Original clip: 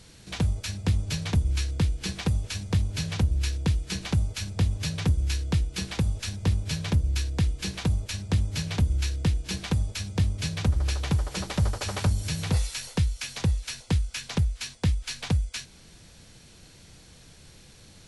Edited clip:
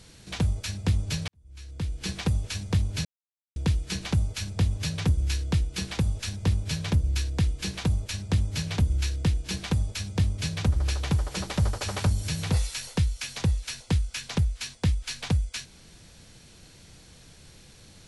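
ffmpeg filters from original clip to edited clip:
-filter_complex "[0:a]asplit=4[s0][s1][s2][s3];[s0]atrim=end=1.28,asetpts=PTS-STARTPTS,afade=t=out:st=1.276:d=0.004:c=hsin[s4];[s1]atrim=start=1.28:end=3.05,asetpts=PTS-STARTPTS,afade=t=in:d=0.82:c=qua,afade=t=out:st=1.766:d=0.004:c=hsin[s5];[s2]atrim=start=3.05:end=3.56,asetpts=PTS-STARTPTS,volume=0[s6];[s3]atrim=start=3.56,asetpts=PTS-STARTPTS,afade=t=in:d=0.004:c=hsin[s7];[s4][s5][s6][s7]concat=n=4:v=0:a=1"

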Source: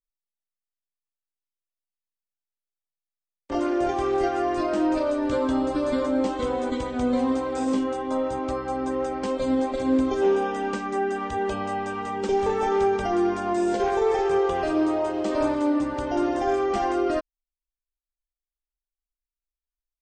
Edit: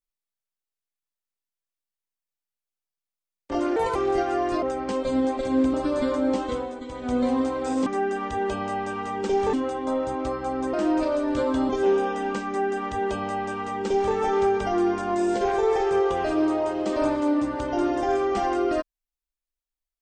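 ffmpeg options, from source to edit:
-filter_complex "[0:a]asplit=11[s0][s1][s2][s3][s4][s5][s6][s7][s8][s9][s10];[s0]atrim=end=3.764[s11];[s1]atrim=start=3.76:end=4.01,asetpts=PTS-STARTPTS,asetrate=56889,aresample=44100[s12];[s2]atrim=start=4.006:end=4.682[s13];[s3]atrim=start=8.968:end=10.082[s14];[s4]atrim=start=5.638:end=6.66,asetpts=PTS-STARTPTS,afade=t=out:st=0.722:d=0.3:silence=0.334965[s15];[s5]atrim=start=6.66:end=6.77,asetpts=PTS-STARTPTS,volume=0.335[s16];[s6]atrim=start=6.77:end=7.772,asetpts=PTS-STARTPTS,afade=t=in:d=0.3:silence=0.334965[s17];[s7]atrim=start=10.858:end=12.532[s18];[s8]atrim=start=7.768:end=8.972[s19];[s9]atrim=start=4.678:end=5.642[s20];[s10]atrim=start=10.078[s21];[s11][s12]acrossfade=d=0.004:c1=hsin:c2=hsin[s22];[s22][s13]acrossfade=d=0.004:c1=hsin:c2=hsin[s23];[s23][s14]acrossfade=d=0.004:c1=hsin:c2=hsin[s24];[s15][s16][s17]concat=n=3:v=0:a=1[s25];[s24][s25]acrossfade=d=0.004:c1=hsin:c2=hsin[s26];[s26][s18]acrossfade=d=0.004:c1=hsin:c2=hsin[s27];[s27][s19]acrossfade=d=0.004:c1=hsin:c2=hsin[s28];[s28][s20]acrossfade=d=0.004:c1=hsin:c2=hsin[s29];[s29][s21]acrossfade=d=0.004:c1=hsin:c2=hsin"

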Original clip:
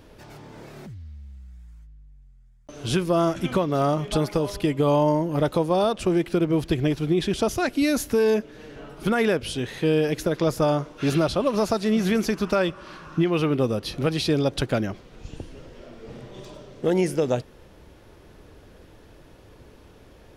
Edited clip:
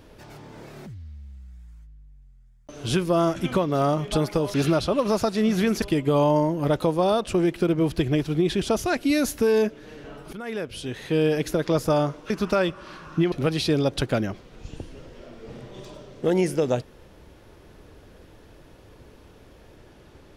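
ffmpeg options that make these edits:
-filter_complex "[0:a]asplit=6[s0][s1][s2][s3][s4][s5];[s0]atrim=end=4.542[s6];[s1]atrim=start=11.018:end=12.302[s7];[s2]atrim=start=4.538:end=9.05,asetpts=PTS-STARTPTS,afade=t=out:st=4.508:d=0.004:c=hsin:silence=0.141254[s8];[s3]atrim=start=9.05:end=11.022,asetpts=PTS-STARTPTS,afade=t=in:d=0.93:silence=0.141254[s9];[s4]atrim=start=12.298:end=13.322[s10];[s5]atrim=start=13.918[s11];[s6][s7]acrossfade=d=0.004:c1=hsin:c2=hsin[s12];[s8][s9]concat=n=2:v=0:a=1[s13];[s12][s13]acrossfade=d=0.004:c1=hsin:c2=hsin[s14];[s14][s10]acrossfade=d=0.004:c1=hsin:c2=hsin[s15];[s15][s11]acrossfade=d=0.004:c1=hsin:c2=hsin"

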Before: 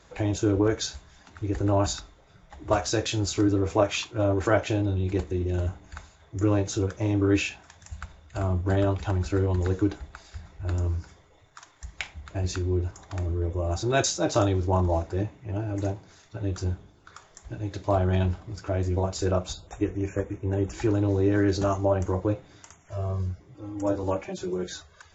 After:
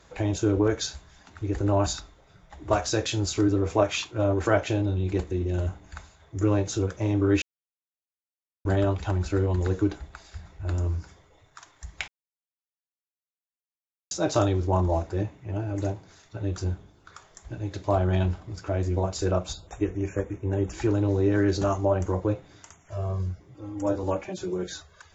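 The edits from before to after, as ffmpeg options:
-filter_complex "[0:a]asplit=5[s0][s1][s2][s3][s4];[s0]atrim=end=7.42,asetpts=PTS-STARTPTS,afade=t=out:st=7.416:d=0.004:c=hsin[s5];[s1]atrim=start=7.42:end=8.65,asetpts=PTS-STARTPTS,volume=0[s6];[s2]atrim=start=8.65:end=12.08,asetpts=PTS-STARTPTS,afade=t=in:d=0.004:c=hsin,afade=t=out:st=3.426:d=0.004:c=hsin[s7];[s3]atrim=start=12.08:end=14.11,asetpts=PTS-STARTPTS,volume=0[s8];[s4]atrim=start=14.11,asetpts=PTS-STARTPTS,afade=t=in:d=0.004:c=hsin[s9];[s5][s6][s7][s8][s9]concat=n=5:v=0:a=1"

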